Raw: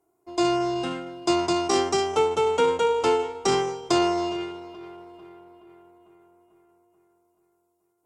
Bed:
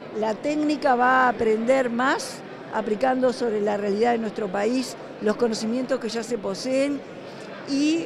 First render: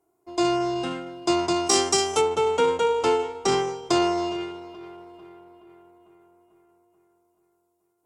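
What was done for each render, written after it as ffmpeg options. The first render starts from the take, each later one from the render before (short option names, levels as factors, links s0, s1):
-filter_complex "[0:a]asplit=3[s0][s1][s2];[s0]afade=t=out:st=1.66:d=0.02[s3];[s1]aemphasis=mode=production:type=75fm,afade=t=in:st=1.66:d=0.02,afade=t=out:st=2.2:d=0.02[s4];[s2]afade=t=in:st=2.2:d=0.02[s5];[s3][s4][s5]amix=inputs=3:normalize=0"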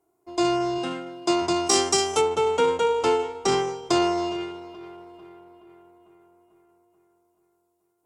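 -filter_complex "[0:a]asettb=1/sr,asplit=3[s0][s1][s2];[s0]atrim=end=0.784[s3];[s1]atrim=start=0.78:end=1.42,asetpts=PTS-STARTPTS,afade=t=in:d=0.004:c=qsin,afade=t=out:st=0.636:d=0.004:c=qsin,highpass=140[s4];[s2]atrim=start=1.416[s5];[s3][s4]acrossfade=d=0.004:c1=hsin:c2=qsin[s6];[s6][s5]acrossfade=d=0.004:c1=qsin:c2=hsin"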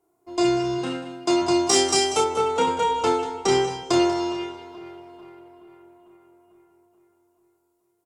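-filter_complex "[0:a]asplit=2[s0][s1];[s1]adelay=31,volume=0.708[s2];[s0][s2]amix=inputs=2:normalize=0,aecho=1:1:190:0.224"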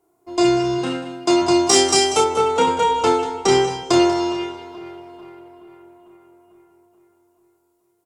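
-af "volume=1.68"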